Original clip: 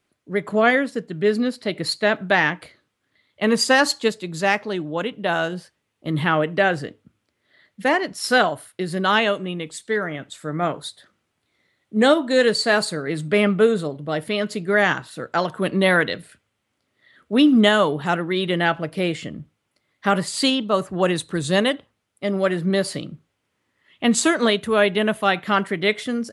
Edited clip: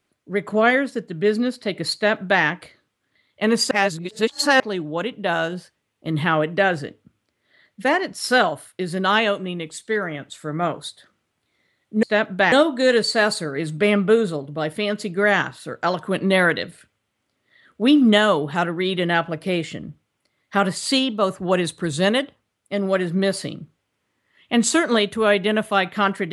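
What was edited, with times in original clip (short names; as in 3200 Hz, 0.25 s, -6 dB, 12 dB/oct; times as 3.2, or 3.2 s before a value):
1.94–2.43 copy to 12.03
3.71–4.6 reverse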